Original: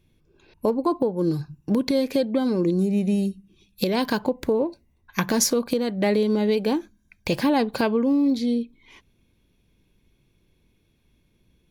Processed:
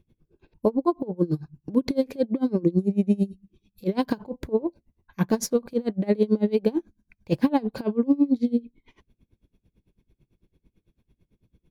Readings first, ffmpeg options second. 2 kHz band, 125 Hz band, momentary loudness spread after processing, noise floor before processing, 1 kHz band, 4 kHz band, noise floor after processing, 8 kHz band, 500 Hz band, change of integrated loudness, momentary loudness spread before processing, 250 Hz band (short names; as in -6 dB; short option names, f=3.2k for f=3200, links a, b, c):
-10.5 dB, -0.5 dB, 8 LU, -66 dBFS, -5.0 dB, -11.0 dB, -81 dBFS, -10.0 dB, -2.5 dB, -2.0 dB, 8 LU, -1.0 dB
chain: -af "tiltshelf=f=970:g=6,aeval=exprs='val(0)*pow(10,-26*(0.5-0.5*cos(2*PI*9*n/s))/20)':c=same"